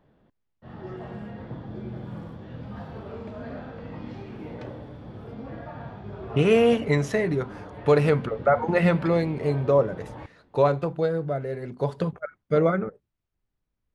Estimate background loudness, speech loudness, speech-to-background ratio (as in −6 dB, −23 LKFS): −39.0 LKFS, −24.0 LKFS, 15.0 dB